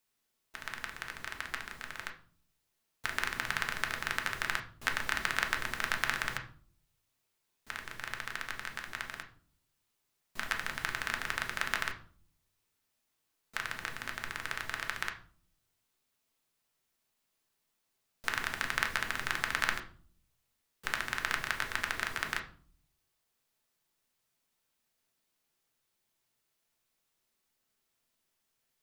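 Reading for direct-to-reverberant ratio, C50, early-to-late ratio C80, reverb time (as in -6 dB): 3.0 dB, 12.0 dB, 17.0 dB, 0.45 s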